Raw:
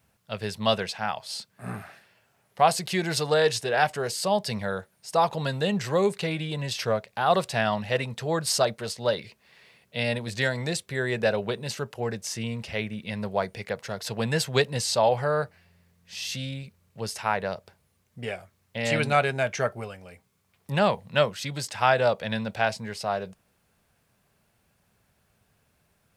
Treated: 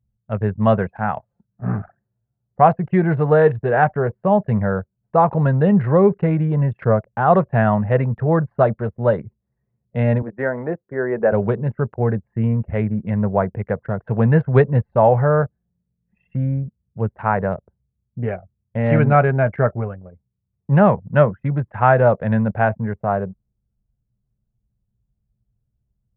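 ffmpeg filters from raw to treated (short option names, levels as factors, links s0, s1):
-filter_complex "[0:a]asettb=1/sr,asplit=3[s0][s1][s2];[s0]atrim=end=10.224[s3];[s1]atrim=start=10.22:end=11.32,asetpts=PTS-STARTPTS,afade=t=in:d=0.004:c=qsin,afade=t=out:st=1.096:d=0.004:c=qsin,acrossover=split=240 2100:gain=0.0794 1 0.0631[s4][s5][s6];[s4][s5][s6]amix=inputs=3:normalize=0[s7];[s2]atrim=start=11.316[s8];[s3][s7]acrossfade=d=0.004:c1=hsin:c2=qsin[s9];[s9][s8]acrossfade=d=0.004:c1=qsin:c2=hsin,lowpass=f=1700:w=0.5412,lowpass=f=1700:w=1.3066,anlmdn=0.251,equalizer=f=96:w=0.38:g=9.5,volume=2"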